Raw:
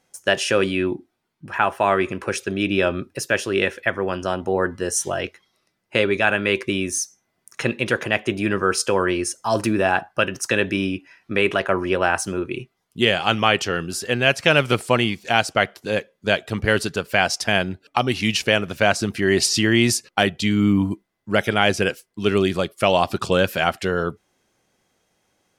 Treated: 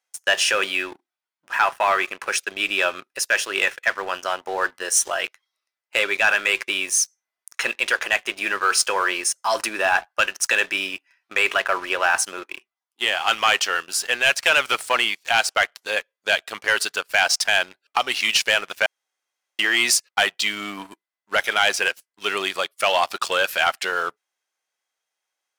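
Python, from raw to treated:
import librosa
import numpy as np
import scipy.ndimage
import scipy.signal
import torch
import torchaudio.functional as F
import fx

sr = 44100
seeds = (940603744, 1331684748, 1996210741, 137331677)

y = fx.cheby_ripple_highpass(x, sr, hz=220.0, ripple_db=6, at=(12.43, 13.28))
y = fx.edit(y, sr, fx.room_tone_fill(start_s=18.86, length_s=0.73), tone=tone)
y = fx.leveller(y, sr, passes=1)
y = scipy.signal.sosfilt(scipy.signal.butter(2, 940.0, 'highpass', fs=sr, output='sos'), y)
y = fx.leveller(y, sr, passes=2)
y = F.gain(torch.from_numpy(y), -6.0).numpy()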